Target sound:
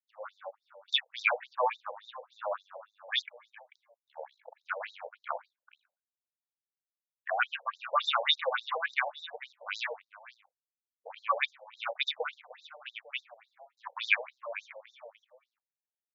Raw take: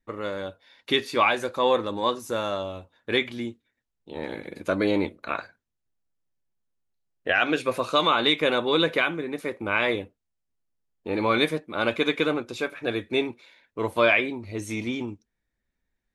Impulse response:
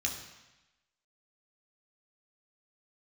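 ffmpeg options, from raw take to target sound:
-filter_complex "[0:a]afwtdn=0.0224,asettb=1/sr,asplit=3[a][b][c];[a]atrim=end=9.444[d];[b]atrim=start=9.44:end=10.01,asetpts=PTS-STARTPTS,afade=t=in:d=0.004:c=qsin,afade=t=out:st=0.566:d=0.004:c=qsin,aeval=exprs='(tanh(7.08*val(0)+0.35)-tanh(0.35))/7.08':c=same[e];[c]atrim=start=10.006[f];[d][e]acrossfade=d=0.004:c1=hsin:c2=qsin[g];[g][f]acrossfade=d=0.004:c1=qsin:c2=hsin,aecho=1:1:441:0.168,acrossover=split=540[h][i];[h]aeval=exprs='max(val(0),0)':c=same[j];[j][i]amix=inputs=2:normalize=0,afftfilt=real='re*between(b*sr/1024,650*pow(5300/650,0.5+0.5*sin(2*PI*3.5*pts/sr))/1.41,650*pow(5300/650,0.5+0.5*sin(2*PI*3.5*pts/sr))*1.41)':imag='im*between(b*sr/1024,650*pow(5300/650,0.5+0.5*sin(2*PI*3.5*pts/sr))/1.41,650*pow(5300/650,0.5+0.5*sin(2*PI*3.5*pts/sr))*1.41)':win_size=1024:overlap=0.75"

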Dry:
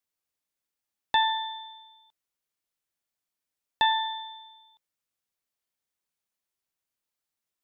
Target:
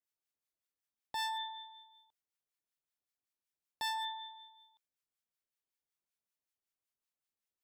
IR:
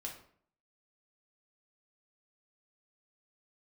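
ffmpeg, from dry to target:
-filter_complex "[0:a]asoftclip=type=hard:threshold=-27dB,acrossover=split=1000[a][b];[a]aeval=exprs='val(0)*(1-0.7/2+0.7/2*cos(2*PI*5.3*n/s))':c=same[c];[b]aeval=exprs='val(0)*(1-0.7/2-0.7/2*cos(2*PI*5.3*n/s))':c=same[d];[c][d]amix=inputs=2:normalize=0,volume=-4.5dB"

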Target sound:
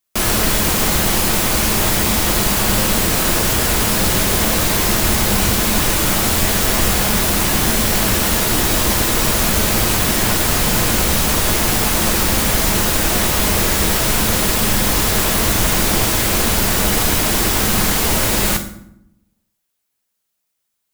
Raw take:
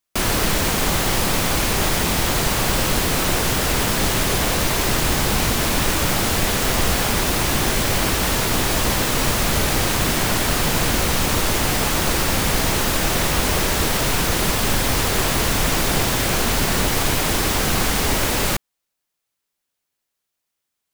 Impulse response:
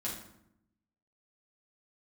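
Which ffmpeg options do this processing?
-filter_complex "[0:a]asplit=2[a][b];[1:a]atrim=start_sample=2205,highshelf=f=5.6k:g=11.5[c];[b][c]afir=irnorm=-1:irlink=0,volume=-6dB[d];[a][d]amix=inputs=2:normalize=0,volume=-1dB"

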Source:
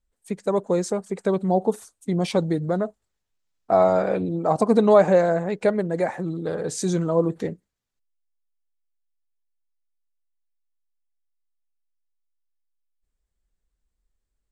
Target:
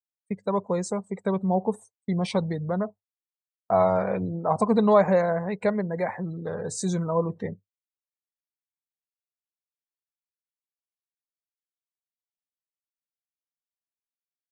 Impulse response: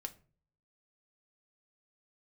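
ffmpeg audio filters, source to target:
-af "afftdn=nr=24:nf=-43,equalizer=f=100:t=o:w=0.33:g=11,equalizer=f=200:t=o:w=0.33:g=4,equalizer=f=315:t=o:w=0.33:g=-9,equalizer=f=1k:t=o:w=0.33:g=7,equalizer=f=2k:t=o:w=0.33:g=5,equalizer=f=4k:t=o:w=0.33:g=3,equalizer=f=8k:t=o:w=0.33:g=4,agate=range=-33dB:threshold=-36dB:ratio=3:detection=peak,volume=-4dB"

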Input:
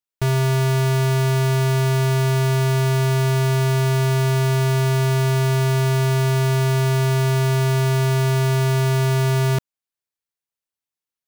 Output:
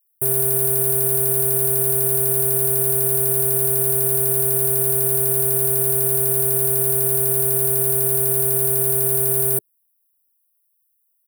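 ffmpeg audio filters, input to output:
-filter_complex "[0:a]firequalizer=gain_entry='entry(110,0);entry(390,15);entry(980,0);entry(2300,-2);entry(5200,-21);entry(9200,10)':delay=0.05:min_phase=1,acrossover=split=410|1700[a][b][c];[b]acrusher=bits=3:mode=log:mix=0:aa=0.000001[d];[c]aexciter=amount=12.6:drive=8.8:freq=8.1k[e];[a][d][e]amix=inputs=3:normalize=0,volume=-14dB"

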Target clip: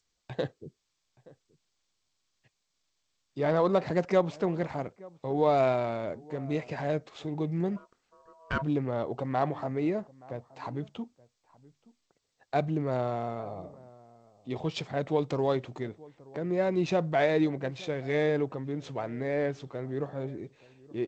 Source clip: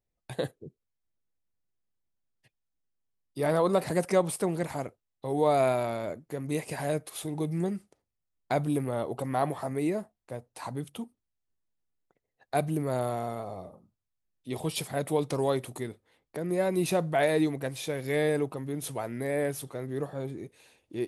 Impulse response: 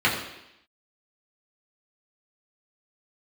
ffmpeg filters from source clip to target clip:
-filter_complex "[0:a]asplit=2[a][b];[b]adelay=874.6,volume=-22dB,highshelf=f=4k:g=-19.7[c];[a][c]amix=inputs=2:normalize=0,asplit=3[d][e][f];[d]afade=t=out:st=7.76:d=0.02[g];[e]aeval=exprs='val(0)*sin(2*PI*810*n/s)':c=same,afade=t=in:st=7.76:d=0.02,afade=t=out:st=8.61:d=0.02[h];[f]afade=t=in:st=8.61:d=0.02[i];[g][h][i]amix=inputs=3:normalize=0,adynamicsmooth=sensitivity=4.5:basefreq=3.5k" -ar 16000 -c:a g722

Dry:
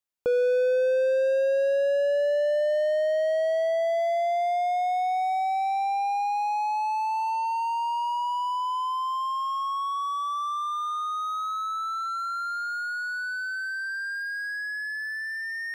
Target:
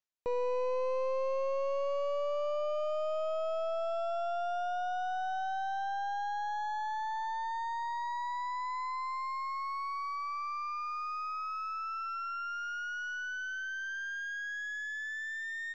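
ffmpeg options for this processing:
-af "areverse,acompressor=mode=upward:threshold=-28dB:ratio=2.5,areverse,aeval=exprs='clip(val(0),-1,0.0266)':c=same,aresample=16000,aresample=44100,volume=-6.5dB"

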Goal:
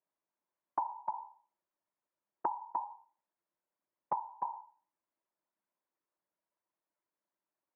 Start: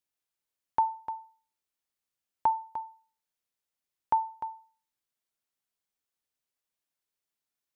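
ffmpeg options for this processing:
-af "afftfilt=real='hypot(re,im)*cos(2*PI*random(0))':imag='hypot(re,im)*sin(2*PI*random(1))':win_size=512:overlap=0.75,acompressor=threshold=-43dB:ratio=10,highpass=130,equalizer=f=190:t=q:w=4:g=5,equalizer=f=330:t=q:w=4:g=9,equalizer=f=600:t=q:w=4:g=9,equalizer=f=980:t=q:w=4:g=9,lowpass=f=2k:w=0.5412,lowpass=f=2k:w=1.3066,volume=4.5dB"

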